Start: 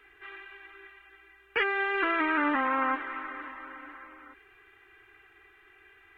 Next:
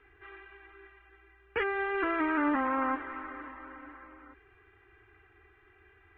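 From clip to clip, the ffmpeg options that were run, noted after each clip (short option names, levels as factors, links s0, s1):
-af "lowpass=f=1100:p=1,equalizer=f=76:t=o:w=1.9:g=10"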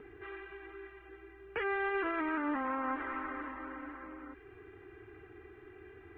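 -filter_complex "[0:a]acrossover=split=130|480[s0][s1][s2];[s1]acompressor=mode=upward:threshold=0.00708:ratio=2.5[s3];[s0][s3][s2]amix=inputs=3:normalize=0,alimiter=level_in=1.68:limit=0.0631:level=0:latency=1:release=63,volume=0.596,volume=1.19"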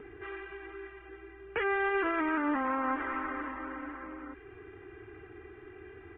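-af "aresample=8000,aresample=44100,volume=1.58"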